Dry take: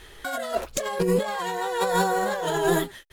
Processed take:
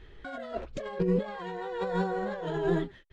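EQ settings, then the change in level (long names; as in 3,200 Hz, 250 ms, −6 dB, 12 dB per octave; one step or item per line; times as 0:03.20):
head-to-tape spacing loss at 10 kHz 37 dB
parametric band 870 Hz −8 dB 2 octaves
0.0 dB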